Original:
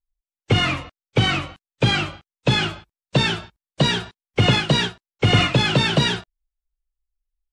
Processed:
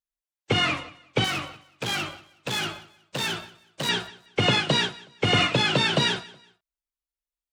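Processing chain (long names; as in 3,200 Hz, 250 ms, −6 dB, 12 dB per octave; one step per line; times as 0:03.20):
0:01.24–0:03.89: hard clipping −22.5 dBFS, distortion −9 dB
high-pass filter 250 Hz 6 dB per octave
repeating echo 185 ms, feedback 28%, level −21 dB
level −2 dB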